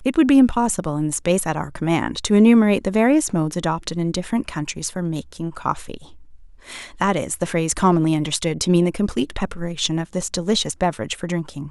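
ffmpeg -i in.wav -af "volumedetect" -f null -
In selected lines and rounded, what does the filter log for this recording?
mean_volume: -20.2 dB
max_volume: -2.4 dB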